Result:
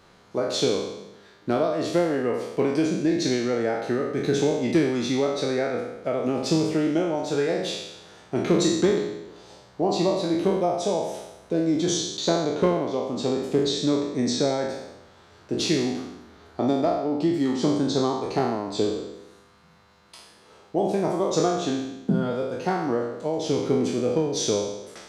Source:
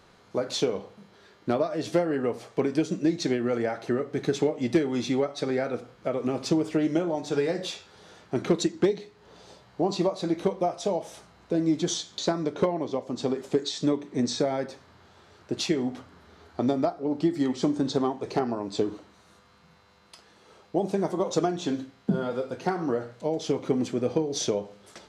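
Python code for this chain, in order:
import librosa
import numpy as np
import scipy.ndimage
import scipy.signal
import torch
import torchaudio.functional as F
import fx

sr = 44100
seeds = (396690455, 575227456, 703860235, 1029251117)

y = fx.spec_trails(x, sr, decay_s=0.96)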